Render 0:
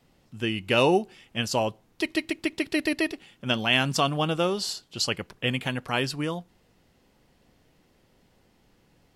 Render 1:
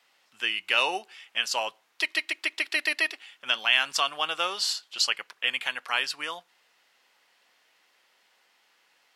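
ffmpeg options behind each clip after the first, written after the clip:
-filter_complex "[0:a]highpass=1.3k,highshelf=f=5.4k:g=-8,asplit=2[a][b];[b]alimiter=limit=-21.5dB:level=0:latency=1:release=393,volume=2.5dB[c];[a][c]amix=inputs=2:normalize=0"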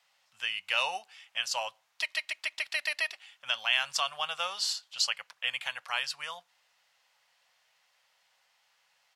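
-af "firequalizer=gain_entry='entry(130,0);entry(310,-28);entry(540,-6);entry(790,-4);entry(1500,-6);entry(6200,-2);entry(11000,-5)':delay=0.05:min_phase=1"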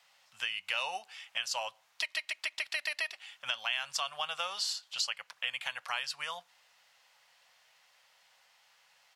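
-af "acompressor=threshold=-39dB:ratio=2.5,volume=4.5dB"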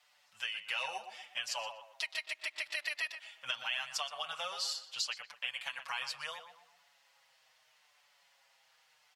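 -filter_complex "[0:a]asplit=2[a][b];[b]adelay=122,lowpass=f=2k:p=1,volume=-8dB,asplit=2[c][d];[d]adelay=122,lowpass=f=2k:p=1,volume=0.4,asplit=2[e][f];[f]adelay=122,lowpass=f=2k:p=1,volume=0.4,asplit=2[g][h];[h]adelay=122,lowpass=f=2k:p=1,volume=0.4,asplit=2[i][j];[j]adelay=122,lowpass=f=2k:p=1,volume=0.4[k];[a][c][e][g][i][k]amix=inputs=6:normalize=0,asplit=2[l][m];[m]adelay=6.2,afreqshift=-0.77[n];[l][n]amix=inputs=2:normalize=1"

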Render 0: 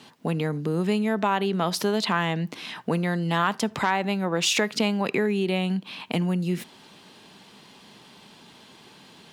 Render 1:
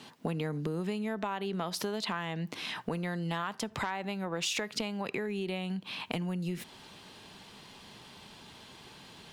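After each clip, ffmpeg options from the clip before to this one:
-af "acompressor=threshold=-29dB:ratio=6,asubboost=boost=4:cutoff=94,volume=-1dB"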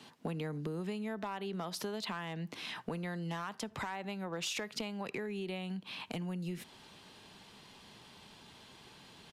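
-filter_complex "[0:a]acrossover=split=260[a][b];[b]volume=27dB,asoftclip=hard,volume=-27dB[c];[a][c]amix=inputs=2:normalize=0,aresample=32000,aresample=44100,volume=-4.5dB"

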